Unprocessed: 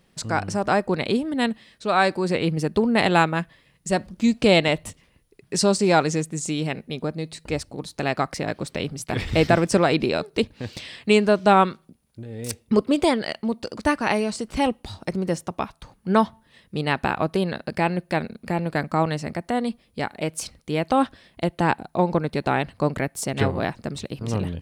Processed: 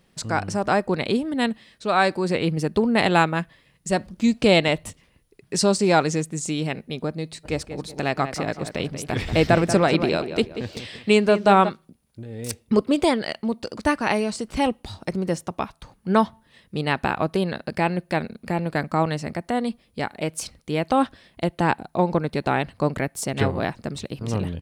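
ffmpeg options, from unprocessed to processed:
-filter_complex "[0:a]asplit=3[s0][s1][s2];[s0]afade=t=out:st=7.43:d=0.02[s3];[s1]asplit=2[s4][s5];[s5]adelay=186,lowpass=f=2600:p=1,volume=0.335,asplit=2[s6][s7];[s7]adelay=186,lowpass=f=2600:p=1,volume=0.37,asplit=2[s8][s9];[s9]adelay=186,lowpass=f=2600:p=1,volume=0.37,asplit=2[s10][s11];[s11]adelay=186,lowpass=f=2600:p=1,volume=0.37[s12];[s4][s6][s8][s10][s12]amix=inputs=5:normalize=0,afade=t=in:st=7.43:d=0.02,afade=t=out:st=11.68:d=0.02[s13];[s2]afade=t=in:st=11.68:d=0.02[s14];[s3][s13][s14]amix=inputs=3:normalize=0"

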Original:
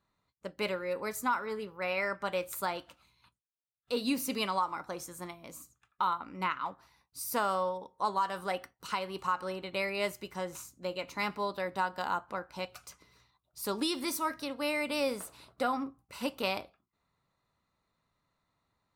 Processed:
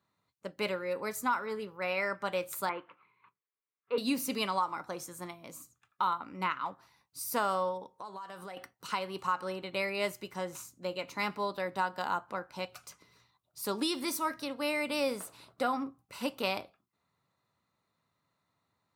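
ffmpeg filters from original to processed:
-filter_complex "[0:a]asettb=1/sr,asplit=3[s0][s1][s2];[s0]atrim=end=2.694[s3];[s1]atrim=start=2.69:end=3.98,asetpts=PTS-STARTPTS,afade=t=in:d=0.004:c=qsin,afade=t=out:st=1.286:d=0.004:c=qsin,highpass=190,equalizer=f=240:t=q:w=4:g=-8,equalizer=f=420:t=q:w=4:g=7,equalizer=f=650:t=q:w=4:g=-10,equalizer=f=1100:t=q:w=4:g=9,equalizer=f=2200:t=q:w=4:g=6,lowpass=f=2300:w=0.5412,lowpass=f=2300:w=1.3066[s4];[s2]atrim=start=3.976[s5];[s3][s4]acrossfade=d=0.004:c1=hsin:c2=qsin[s6];[s6][s5]acrossfade=d=0.004:c1=qsin:c2=hsin,asettb=1/sr,asplit=3[s7][s8][s9];[s7]atrim=end=7.824[s10];[s8]atrim=start=7.82:end=8.57,asetpts=PTS-STARTPTS,afade=t=in:d=0.004:c=qsin,afade=t=out:st=0.746:d=0.004:c=qsin,acompressor=threshold=0.00891:ratio=5:attack=3.2:release=140:knee=1:detection=peak[s11];[s9]atrim=start=8.566[s12];[s10][s11]acrossfade=d=0.004:c1=hsin:c2=qsin[s13];[s13][s12]acrossfade=d=0.004:c1=qsin:c2=hsin,highpass=f=83:w=0.5412,highpass=f=83:w=1.3066"

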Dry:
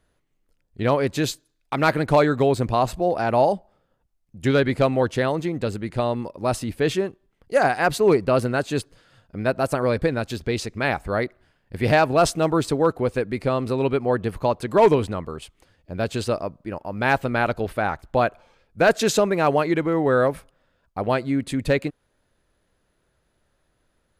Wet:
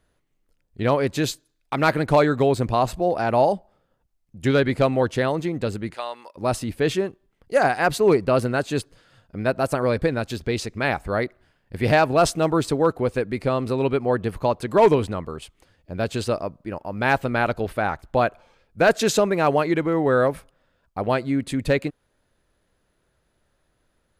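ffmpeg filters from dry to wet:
-filter_complex "[0:a]asplit=3[s0][s1][s2];[s0]afade=t=out:st=5.93:d=0.02[s3];[s1]highpass=980,afade=t=in:st=5.93:d=0.02,afade=t=out:st=6.35:d=0.02[s4];[s2]afade=t=in:st=6.35:d=0.02[s5];[s3][s4][s5]amix=inputs=3:normalize=0"

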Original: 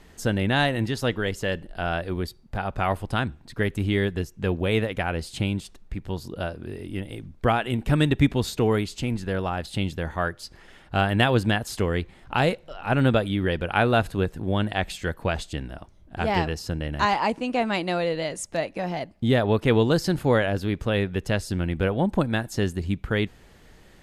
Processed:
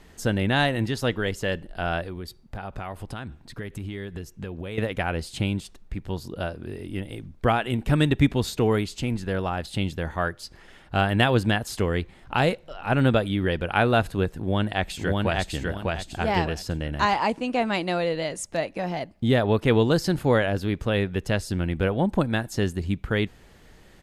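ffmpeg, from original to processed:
-filter_complex "[0:a]asettb=1/sr,asplit=3[s0][s1][s2];[s0]atrim=end=2.034[s3];[s1]atrim=start=2.03:end=4.78,asetpts=PTS-STARTPTS,afade=t=in:d=0.004:c=qsin,afade=t=out:st=2.746:d=0.004:c=qsin,acompressor=threshold=0.0316:ratio=6:attack=3.2:release=140:knee=1:detection=peak[s4];[s2]atrim=start=4.776[s5];[s3][s4]acrossfade=d=0.004:c1=hsin:c2=qsin[s6];[s6][s5]acrossfade=d=0.004:c1=qsin:c2=hsin,asplit=2[s7][s8];[s8]afade=t=in:st=14.37:d=0.01,afade=t=out:st=15.53:d=0.01,aecho=0:1:600|1200|1800|2400:0.794328|0.238298|0.0714895|0.0214469[s9];[s7][s9]amix=inputs=2:normalize=0"

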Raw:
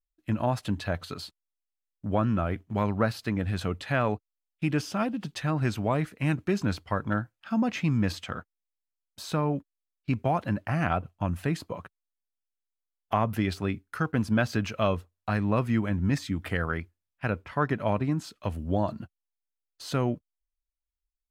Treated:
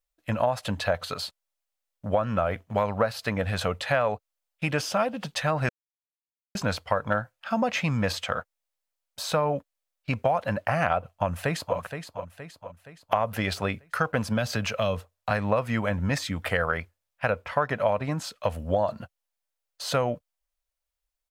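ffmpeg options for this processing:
-filter_complex "[0:a]asplit=2[s0][s1];[s1]afade=t=in:st=11.08:d=0.01,afade=t=out:st=11.77:d=0.01,aecho=0:1:470|940|1410|1880|2350|2820:0.334965|0.167483|0.0837414|0.0418707|0.0209353|0.0104677[s2];[s0][s2]amix=inputs=2:normalize=0,asettb=1/sr,asplit=3[s3][s4][s5];[s3]atrim=end=14.274[s6];[s4]atrim=start=14.27:end=15.31,asetpts=PTS-STARTPTS,afade=t=in:d=0.004:c=qsin,afade=t=out:st=1.036:d=0.004:c=qsin,acrossover=split=300|3000[s7][s8][s9];[s8]acompressor=threshold=0.02:ratio=6:attack=3.2:release=140:knee=2.83:detection=peak[s10];[s7][s10][s9]amix=inputs=3:normalize=0[s11];[s5]atrim=start=15.306[s12];[s6][s11]acrossfade=d=0.004:c1=hsin:c2=qsin[s13];[s13][s12]acrossfade=d=0.004:c1=qsin:c2=hsin,asplit=3[s14][s15][s16];[s14]atrim=end=5.69,asetpts=PTS-STARTPTS,afade=t=out:st=5.686:d=0.004:c=hsin[s17];[s15]atrim=start=5.69:end=6.55,asetpts=PTS-STARTPTS,volume=0[s18];[s16]atrim=start=6.55,asetpts=PTS-STARTPTS,afade=t=in:d=0.004:c=hsin[s19];[s17][s18][s19]concat=n=3:v=0:a=1,lowshelf=f=430:t=q:w=3:g=-6.5,acompressor=threshold=0.0447:ratio=6,volume=2.24"

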